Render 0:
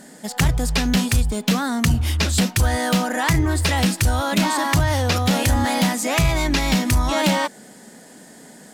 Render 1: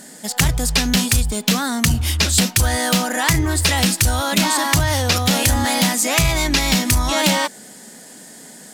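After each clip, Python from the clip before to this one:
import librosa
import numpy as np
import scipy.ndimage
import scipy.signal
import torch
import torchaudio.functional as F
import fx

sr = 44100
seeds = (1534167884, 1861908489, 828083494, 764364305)

y = fx.high_shelf(x, sr, hz=2600.0, db=8.5)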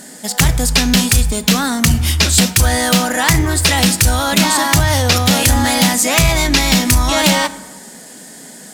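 y = 10.0 ** (-6.0 / 20.0) * (np.abs((x / 10.0 ** (-6.0 / 20.0) + 3.0) % 4.0 - 2.0) - 1.0)
y = fx.rev_plate(y, sr, seeds[0], rt60_s=1.2, hf_ratio=0.55, predelay_ms=0, drr_db=14.0)
y = y * librosa.db_to_amplitude(4.0)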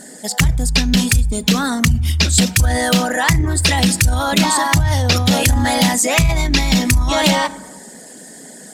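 y = fx.envelope_sharpen(x, sr, power=1.5)
y = y * librosa.db_to_amplitude(-1.5)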